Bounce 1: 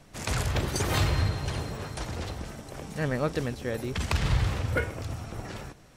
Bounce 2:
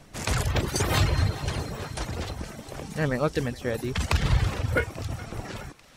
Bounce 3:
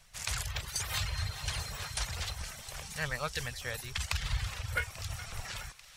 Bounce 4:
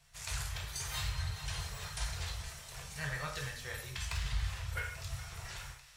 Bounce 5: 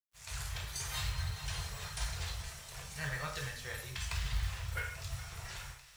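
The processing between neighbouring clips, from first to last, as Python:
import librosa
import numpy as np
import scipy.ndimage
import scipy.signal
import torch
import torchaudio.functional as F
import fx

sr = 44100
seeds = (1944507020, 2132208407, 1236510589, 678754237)

y1 = fx.dereverb_blind(x, sr, rt60_s=0.57)
y1 = fx.echo_thinned(y1, sr, ms=420, feedback_pct=76, hz=800.0, wet_db=-19)
y1 = y1 * 10.0 ** (3.5 / 20.0)
y2 = fx.tone_stack(y1, sr, knobs='10-0-10')
y2 = fx.rider(y2, sr, range_db=4, speed_s=0.5)
y3 = 10.0 ** (-19.5 / 20.0) * np.tanh(y2 / 10.0 ** (-19.5 / 20.0))
y3 = fx.rev_gated(y3, sr, seeds[0], gate_ms=220, shape='falling', drr_db=-1.5)
y3 = y3 * 10.0 ** (-7.5 / 20.0)
y4 = fx.fade_in_head(y3, sr, length_s=0.53)
y4 = fx.quant_companded(y4, sr, bits=6)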